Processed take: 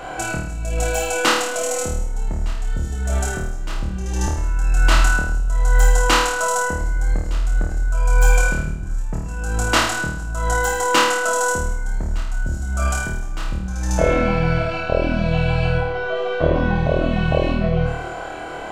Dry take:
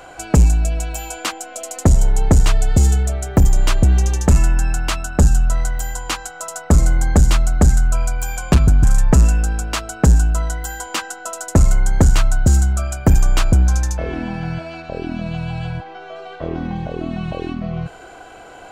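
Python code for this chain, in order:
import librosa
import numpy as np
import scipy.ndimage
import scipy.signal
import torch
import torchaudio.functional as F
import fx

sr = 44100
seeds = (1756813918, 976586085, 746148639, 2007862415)

y = fx.high_shelf(x, sr, hz=3700.0, db=-7.5)
y = fx.over_compress(y, sr, threshold_db=-21.0, ratio=-1.0)
y = fx.room_flutter(y, sr, wall_m=4.5, rt60_s=0.7)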